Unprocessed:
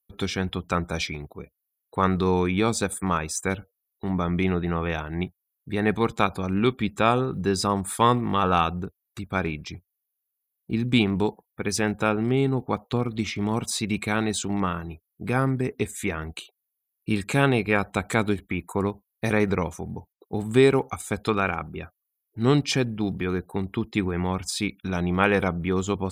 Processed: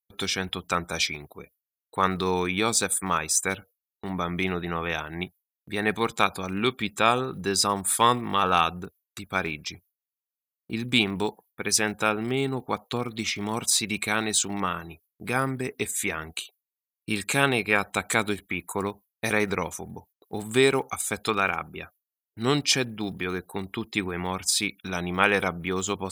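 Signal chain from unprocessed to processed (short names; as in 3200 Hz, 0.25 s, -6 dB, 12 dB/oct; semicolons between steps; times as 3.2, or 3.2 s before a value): gate with hold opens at -41 dBFS; tilt +2.5 dB/oct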